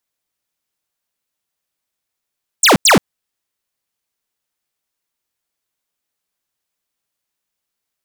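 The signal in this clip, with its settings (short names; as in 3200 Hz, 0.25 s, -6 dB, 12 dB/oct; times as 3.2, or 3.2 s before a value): burst of laser zaps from 9300 Hz, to 140 Hz, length 0.13 s square, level -8.5 dB, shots 2, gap 0.09 s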